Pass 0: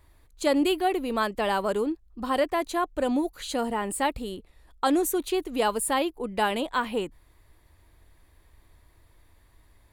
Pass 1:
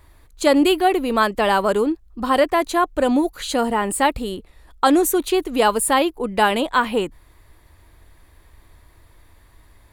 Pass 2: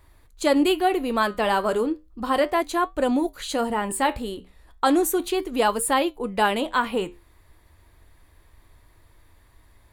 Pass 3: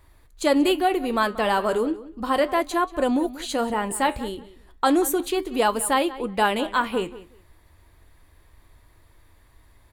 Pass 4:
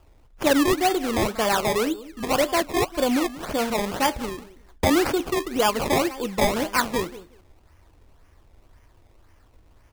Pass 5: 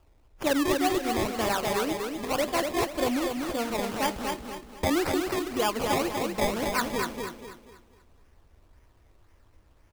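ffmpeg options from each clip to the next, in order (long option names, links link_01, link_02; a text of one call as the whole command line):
ffmpeg -i in.wav -af "equalizer=frequency=1300:width=1.5:gain=2,volume=7.5dB" out.wav
ffmpeg -i in.wav -af "flanger=delay=7.3:depth=6.4:regen=-74:speed=0.34:shape=triangular" out.wav
ffmpeg -i in.wav -filter_complex "[0:a]asplit=2[link_01][link_02];[link_02]adelay=184,lowpass=frequency=4500:poles=1,volume=-16.5dB,asplit=2[link_03][link_04];[link_04]adelay=184,lowpass=frequency=4500:poles=1,volume=0.18[link_05];[link_01][link_03][link_05]amix=inputs=3:normalize=0" out.wav
ffmpeg -i in.wav -af "acrusher=samples=21:mix=1:aa=0.000001:lfo=1:lforange=21:lforate=1.9" out.wav
ffmpeg -i in.wav -af "aecho=1:1:243|486|729|972|1215:0.596|0.214|0.0772|0.0278|0.01,volume=-6dB" out.wav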